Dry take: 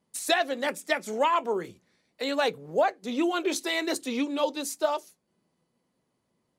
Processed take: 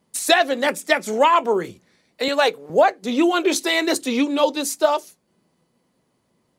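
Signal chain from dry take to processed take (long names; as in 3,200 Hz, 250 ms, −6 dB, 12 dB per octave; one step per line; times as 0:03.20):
0:02.28–0:02.70: high-pass filter 360 Hz 12 dB per octave
level +8.5 dB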